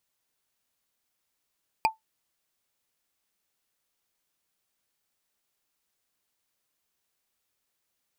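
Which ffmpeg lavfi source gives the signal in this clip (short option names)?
-f lavfi -i "aevalsrc='0.178*pow(10,-3*t/0.14)*sin(2*PI*883*t)+0.112*pow(10,-3*t/0.041)*sin(2*PI*2434.4*t)+0.0708*pow(10,-3*t/0.018)*sin(2*PI*4771.7*t)+0.0447*pow(10,-3*t/0.01)*sin(2*PI*7887.8*t)+0.0282*pow(10,-3*t/0.006)*sin(2*PI*11779.2*t)':d=0.45:s=44100"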